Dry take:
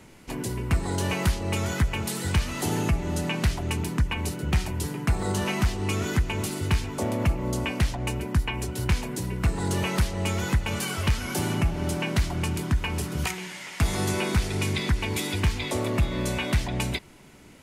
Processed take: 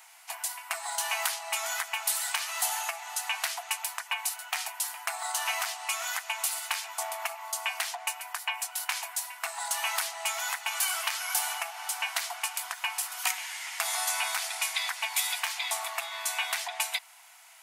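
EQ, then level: brick-wall FIR high-pass 640 Hz; treble shelf 8.7 kHz +11 dB; 0.0 dB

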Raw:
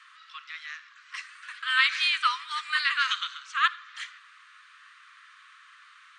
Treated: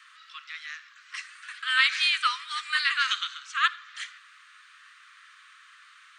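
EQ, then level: high-pass 1.1 kHz 24 dB/octave; treble shelf 6.6 kHz +7 dB; 0.0 dB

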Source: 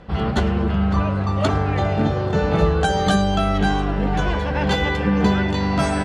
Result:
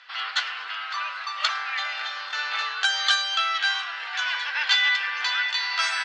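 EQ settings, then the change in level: high-pass 1.4 kHz 24 dB/octave; distance through air 120 m; peaking EQ 4.8 kHz +8 dB 1.2 oct; +5.0 dB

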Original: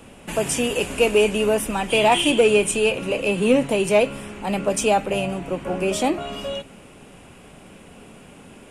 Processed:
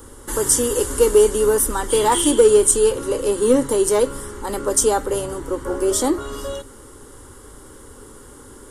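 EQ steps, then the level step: bass shelf 120 Hz +7 dB; treble shelf 6.1 kHz +9 dB; static phaser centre 680 Hz, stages 6; +4.5 dB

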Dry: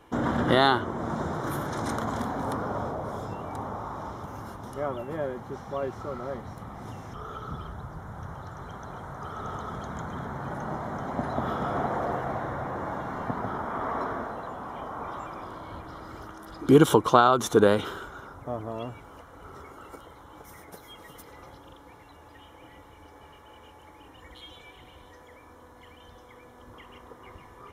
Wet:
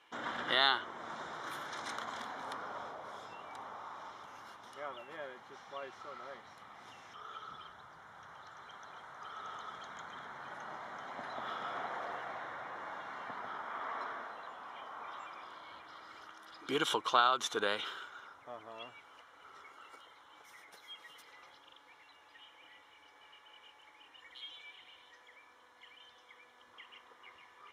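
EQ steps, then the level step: band-pass filter 2.9 kHz, Q 1.1; 0.0 dB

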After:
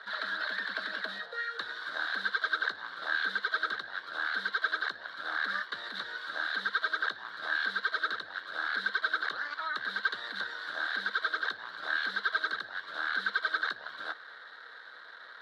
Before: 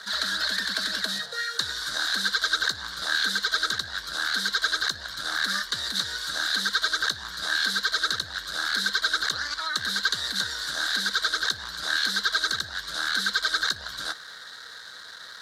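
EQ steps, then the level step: high-pass 400 Hz 12 dB/octave; distance through air 480 m; band-stop 4.8 kHz, Q 28; 0.0 dB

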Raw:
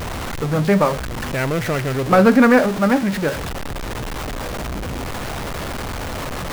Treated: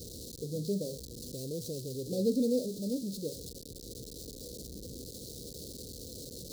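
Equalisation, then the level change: high-pass 41 Hz; Chebyshev band-stop 490–4100 Hz, order 4; bass shelf 430 Hz -10.5 dB; -8.5 dB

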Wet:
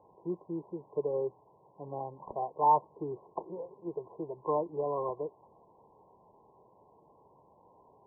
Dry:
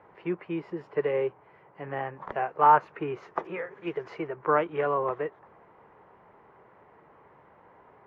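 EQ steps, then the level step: brick-wall FIR low-pass 1.1 kHz; -5.0 dB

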